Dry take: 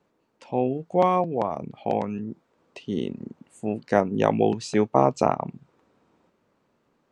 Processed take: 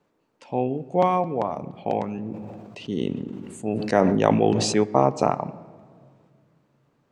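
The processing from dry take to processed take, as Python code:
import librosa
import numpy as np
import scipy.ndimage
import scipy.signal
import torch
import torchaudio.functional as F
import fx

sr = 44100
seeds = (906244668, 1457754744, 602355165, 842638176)

y = fx.room_shoebox(x, sr, seeds[0], volume_m3=2800.0, walls='mixed', distance_m=0.38)
y = fx.sustainer(y, sr, db_per_s=28.0, at=(2.24, 4.82), fade=0.02)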